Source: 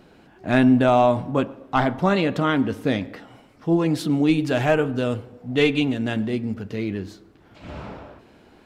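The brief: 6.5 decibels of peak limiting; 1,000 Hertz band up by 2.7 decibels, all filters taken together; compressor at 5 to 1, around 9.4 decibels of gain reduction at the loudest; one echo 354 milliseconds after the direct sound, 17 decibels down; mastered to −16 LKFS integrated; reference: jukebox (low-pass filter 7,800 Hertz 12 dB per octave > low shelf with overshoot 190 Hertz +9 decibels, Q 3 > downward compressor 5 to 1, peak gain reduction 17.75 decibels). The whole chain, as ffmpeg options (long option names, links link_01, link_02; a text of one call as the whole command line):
ffmpeg -i in.wav -af "equalizer=frequency=1000:width_type=o:gain=4.5,acompressor=threshold=-22dB:ratio=5,alimiter=limit=-18dB:level=0:latency=1,lowpass=7800,lowshelf=frequency=190:width_type=q:width=3:gain=9,aecho=1:1:354:0.141,acompressor=threshold=-34dB:ratio=5,volume=21dB" out.wav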